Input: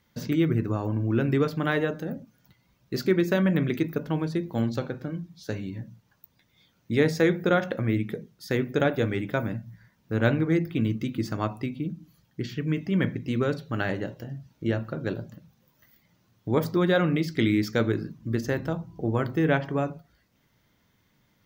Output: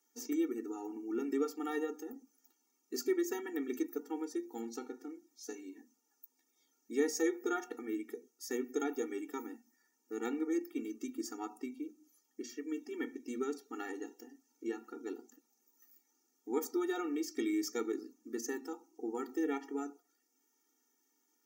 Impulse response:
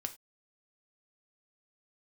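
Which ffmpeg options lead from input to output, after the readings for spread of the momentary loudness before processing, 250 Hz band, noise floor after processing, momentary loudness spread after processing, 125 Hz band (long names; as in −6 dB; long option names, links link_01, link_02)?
13 LU, −11.0 dB, −79 dBFS, 13 LU, below −40 dB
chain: -af "highshelf=frequency=4900:width_type=q:width=3:gain=9,afftfilt=real='re*eq(mod(floor(b*sr/1024/240),2),1)':imag='im*eq(mod(floor(b*sr/1024/240),2),1)':win_size=1024:overlap=0.75,volume=-8.5dB"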